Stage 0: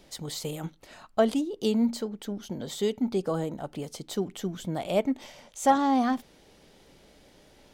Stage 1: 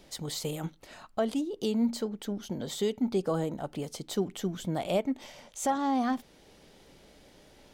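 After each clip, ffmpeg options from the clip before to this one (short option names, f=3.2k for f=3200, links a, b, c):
-af "alimiter=limit=-18.5dB:level=0:latency=1:release=386"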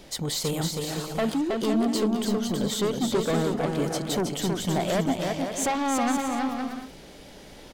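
-filter_complex "[0:a]asplit=2[a][b];[b]aeval=exprs='0.126*sin(PI/2*3.55*val(0)/0.126)':c=same,volume=-11dB[c];[a][c]amix=inputs=2:normalize=0,aecho=1:1:320|512|627.2|696.3|737.8:0.631|0.398|0.251|0.158|0.1"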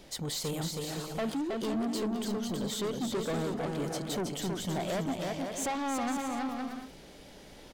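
-af "asoftclip=type=tanh:threshold=-22dB,volume=-5dB"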